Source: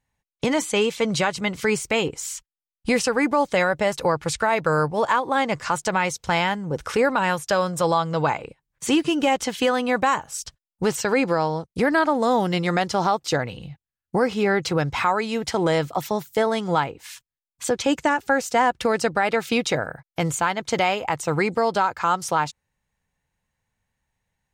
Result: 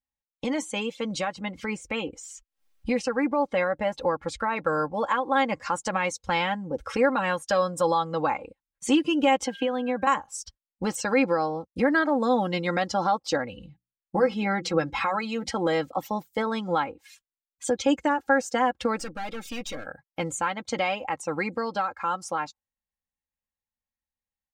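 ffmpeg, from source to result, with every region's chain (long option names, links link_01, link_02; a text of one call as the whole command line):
ffmpeg -i in.wav -filter_complex "[0:a]asettb=1/sr,asplit=3[link_01][link_02][link_03];[link_01]atrim=end=1.244[link_04];[link_02]atrim=start=1.24:end=4.57,asetpts=PTS-STARTPTS,afade=type=in:duration=0.004:curve=qsin,afade=type=out:start_time=3.326:duration=0.004:curve=qsin,highshelf=frequency=4800:gain=-7.5,acompressor=mode=upward:threshold=-27dB:ratio=2.5:attack=3.2:release=140:knee=2.83:detection=peak[link_05];[link_03]atrim=start=4.566[link_06];[link_04][link_05]acrossfade=duration=0.004:curve1=hsin:curve2=qsin[link_07];[link_07][link_06]acrossfade=duration=0.004:curve1=qsin:curve2=hsin,asettb=1/sr,asplit=3[link_08][link_09][link_10];[link_08]atrim=end=9.464[link_11];[link_09]atrim=start=9.46:end=10.07,asetpts=PTS-STARTPTS,afade=type=in:duration=0.004:curve=qsin,afade=type=out:start_time=0.606:duration=0.004:curve=qsin,aeval=exprs='val(0)+0.00708*sin(2*PI*1600*n/s)':channel_layout=same,acrossover=split=300|920|4000[link_12][link_13][link_14][link_15];[link_12]acompressor=threshold=-32dB:ratio=3[link_16];[link_13]acompressor=threshold=-26dB:ratio=3[link_17];[link_14]acompressor=threshold=-34dB:ratio=3[link_18];[link_15]acompressor=threshold=-54dB:ratio=3[link_19];[link_16][link_17][link_18][link_19]amix=inputs=4:normalize=0[link_20];[link_10]atrim=start=10.066[link_21];[link_11][link_20]acrossfade=duration=0.004:curve1=hsin:curve2=qsin[link_22];[link_22][link_21]acrossfade=duration=0.004:curve1=qsin:curve2=hsin,asettb=1/sr,asplit=3[link_23][link_24][link_25];[link_23]atrim=end=13.674[link_26];[link_24]atrim=start=13.67:end=15.48,asetpts=PTS-STARTPTS,afade=type=in:duration=0.004:curve=qsin,afade=type=out:start_time=1.806:duration=0.004:curve=qsin,bandreject=frequency=60:width_type=h:width=6,bandreject=frequency=120:width_type=h:width=6,bandreject=frequency=180:width_type=h:width=6,bandreject=frequency=240:width_type=h:width=6,bandreject=frequency=300:width_type=h:width=6,bandreject=frequency=360:width_type=h:width=6,aecho=1:1:6:0.38,atrim=end_sample=79821[link_27];[link_25]atrim=start=15.476[link_28];[link_26][link_27]acrossfade=duration=0.004:curve1=hsin:curve2=qsin[link_29];[link_29][link_28]acrossfade=duration=0.004:curve1=qsin:curve2=hsin,asettb=1/sr,asplit=3[link_30][link_31][link_32];[link_30]atrim=end=18.974[link_33];[link_31]atrim=start=18.97:end=19.87,asetpts=PTS-STARTPTS,afade=type=in:duration=0.004:curve=qsin,afade=type=out:start_time=0.896:duration=0.004:curve=qsin,highshelf=frequency=2700:gain=8,bandreject=frequency=4100:width=20,aeval=exprs='(tanh(25.1*val(0)+0.5)-tanh(0.5))/25.1':channel_layout=same[link_34];[link_32]atrim=start=19.866[link_35];[link_33][link_34]acrossfade=duration=0.004:curve1=hsin:curve2=qsin[link_36];[link_36][link_35]acrossfade=duration=0.004:curve1=qsin:curve2=hsin,afftdn=noise_reduction=13:noise_floor=-37,aecho=1:1:3.7:0.69,dynaudnorm=framelen=260:gausssize=31:maxgain=7dB,volume=-8.5dB" out.wav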